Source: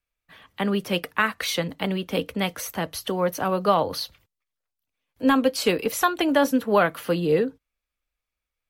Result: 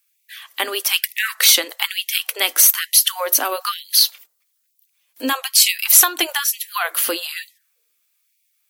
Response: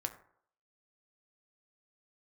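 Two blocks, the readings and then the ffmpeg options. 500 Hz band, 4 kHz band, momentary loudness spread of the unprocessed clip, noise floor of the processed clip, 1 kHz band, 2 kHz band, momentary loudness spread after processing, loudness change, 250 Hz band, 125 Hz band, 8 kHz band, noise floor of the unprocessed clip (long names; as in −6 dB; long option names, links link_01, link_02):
−7.5 dB, +13.5 dB, 9 LU, −69 dBFS, −1.0 dB, +5.5 dB, 14 LU, +8.0 dB, −10.0 dB, below −35 dB, +20.0 dB, below −85 dBFS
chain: -filter_complex "[0:a]equalizer=frequency=450:width=4:gain=-3,acrossover=split=180[link_01][link_02];[link_02]acompressor=threshold=-25dB:ratio=3[link_03];[link_01][link_03]amix=inputs=2:normalize=0,crystalizer=i=9.5:c=0,asoftclip=type=hard:threshold=-5.5dB,asplit=2[link_04][link_05];[1:a]atrim=start_sample=2205[link_06];[link_05][link_06]afir=irnorm=-1:irlink=0,volume=-13dB[link_07];[link_04][link_07]amix=inputs=2:normalize=0,afftfilt=real='re*gte(b*sr/1024,230*pow(1900/230,0.5+0.5*sin(2*PI*1.1*pts/sr)))':imag='im*gte(b*sr/1024,230*pow(1900/230,0.5+0.5*sin(2*PI*1.1*pts/sr)))':win_size=1024:overlap=0.75"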